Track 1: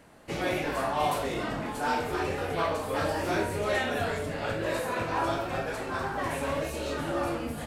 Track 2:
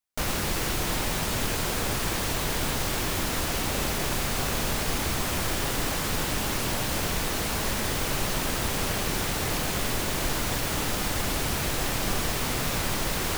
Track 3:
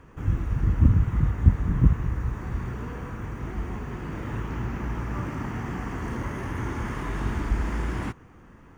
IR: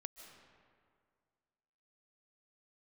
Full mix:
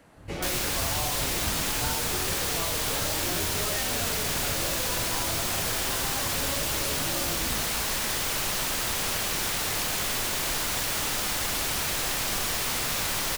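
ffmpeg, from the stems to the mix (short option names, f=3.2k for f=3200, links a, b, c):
-filter_complex "[0:a]volume=-1dB[a];[1:a]lowshelf=f=440:g=-11,adelay=250,volume=3dB[b];[2:a]volume=-17.5dB[c];[a][b][c]amix=inputs=3:normalize=0,acrossover=split=190|3000[d][e][f];[e]acompressor=threshold=-31dB:ratio=6[g];[d][g][f]amix=inputs=3:normalize=0"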